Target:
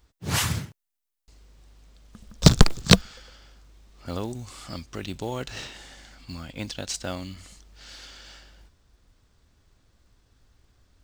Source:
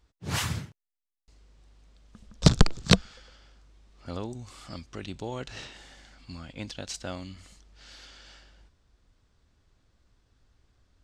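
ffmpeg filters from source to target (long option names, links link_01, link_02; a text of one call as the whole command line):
ffmpeg -i in.wav -af "highshelf=frequency=8300:gain=6.5,acrusher=bits=6:mode=log:mix=0:aa=0.000001,volume=4dB" out.wav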